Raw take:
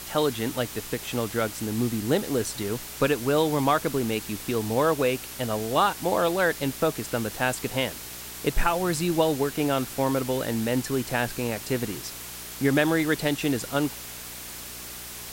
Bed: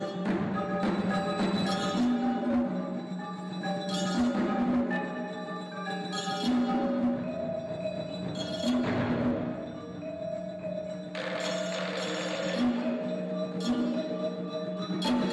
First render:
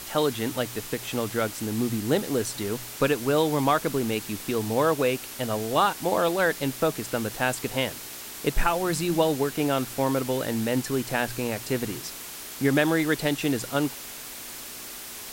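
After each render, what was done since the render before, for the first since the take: de-hum 60 Hz, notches 3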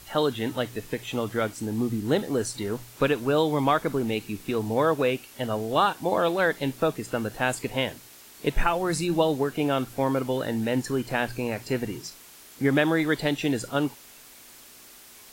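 noise print and reduce 10 dB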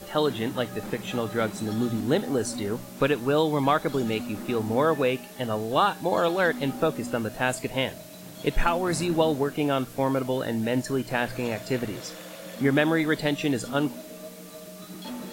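add bed -9.5 dB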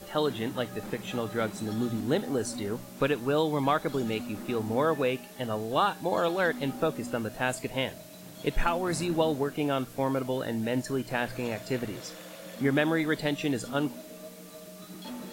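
trim -3.5 dB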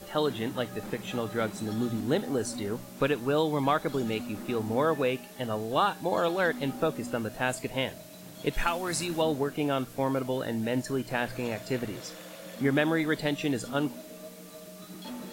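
8.53–9.22 s: tilt shelf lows -4.5 dB, about 1.3 kHz

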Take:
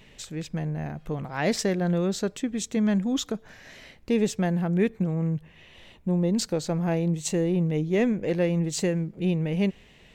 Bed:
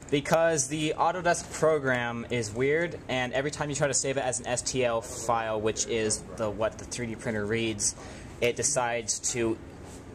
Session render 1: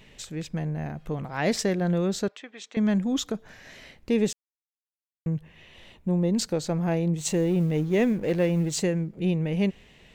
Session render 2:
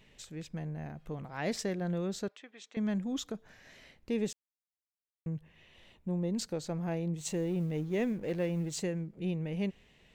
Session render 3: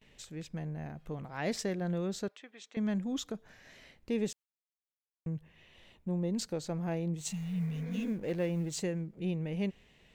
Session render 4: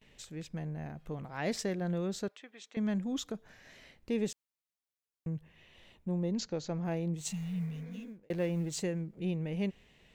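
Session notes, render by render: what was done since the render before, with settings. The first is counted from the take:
2.28–2.77 s: band-pass 770–3400 Hz; 4.33–5.26 s: mute; 7.18–8.79 s: companding laws mixed up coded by mu
trim -9 dB
7.31–8.05 s: spectral replace 230–2500 Hz both; gate with hold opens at -54 dBFS
6.31–6.85 s: steep low-pass 7.1 kHz 96 dB/octave; 7.44–8.30 s: fade out

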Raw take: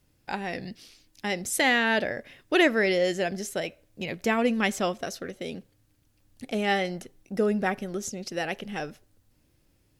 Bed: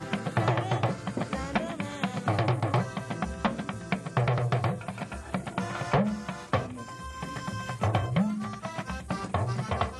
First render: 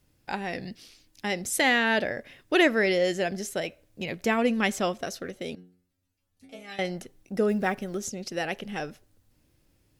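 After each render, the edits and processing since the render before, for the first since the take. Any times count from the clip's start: 5.55–6.79 s: inharmonic resonator 89 Hz, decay 0.5 s, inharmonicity 0.002; 7.49–8.08 s: block-companded coder 7-bit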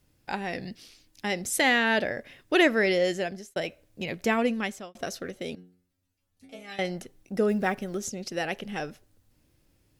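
2.95–3.56 s: fade out equal-power; 4.37–4.95 s: fade out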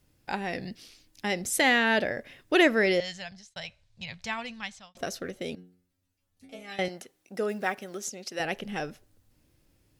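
3.00–4.97 s: FFT filter 110 Hz 0 dB, 190 Hz -9 dB, 340 Hz -28 dB, 550 Hz -17 dB, 900 Hz -4 dB, 1.3 kHz -7 dB, 2.8 kHz -3 dB, 4 kHz +3 dB, 8.7 kHz -8 dB, 14 kHz -28 dB; 6.88–8.40 s: high-pass 600 Hz 6 dB/octave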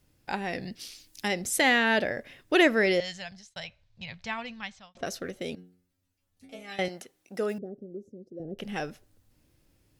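0.79–1.27 s: treble shelf 2.4 kHz -> 3.8 kHz +11 dB; 3.64–5.06 s: distance through air 96 m; 7.58–8.59 s: inverse Chebyshev low-pass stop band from 900 Hz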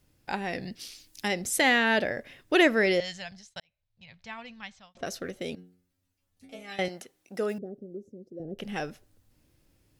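3.60–5.23 s: fade in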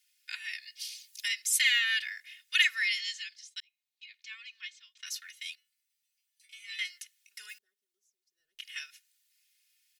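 inverse Chebyshev high-pass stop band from 780 Hz, stop band 50 dB; comb 2.8 ms, depth 96%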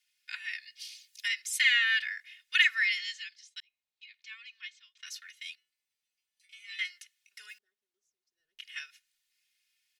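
low-pass 3.8 kHz 6 dB/octave; dynamic bell 1.5 kHz, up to +5 dB, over -44 dBFS, Q 1.2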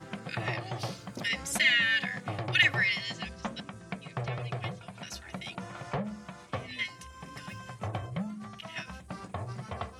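add bed -9 dB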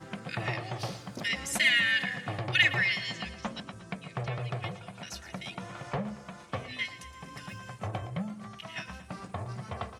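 feedback delay 116 ms, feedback 56%, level -15 dB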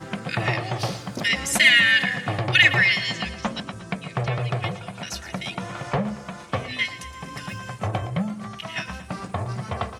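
trim +9 dB; peak limiter -3 dBFS, peak gain reduction 2.5 dB

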